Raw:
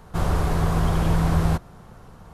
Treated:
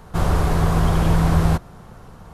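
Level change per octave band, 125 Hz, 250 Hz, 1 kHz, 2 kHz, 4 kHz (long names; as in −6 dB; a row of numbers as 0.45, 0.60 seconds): +3.5, +3.5, +3.5, +3.5, +3.5 decibels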